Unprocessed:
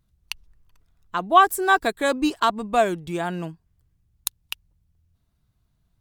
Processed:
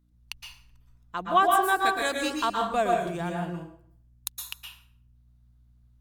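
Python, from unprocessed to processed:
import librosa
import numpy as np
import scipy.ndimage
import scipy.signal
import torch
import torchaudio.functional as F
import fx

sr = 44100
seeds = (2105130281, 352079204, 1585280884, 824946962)

y = fx.tilt_shelf(x, sr, db=-6.0, hz=970.0, at=(1.85, 2.36))
y = fx.add_hum(y, sr, base_hz=60, snr_db=33)
y = fx.rev_plate(y, sr, seeds[0], rt60_s=0.6, hf_ratio=0.75, predelay_ms=105, drr_db=0.5)
y = y * librosa.db_to_amplitude(-7.0)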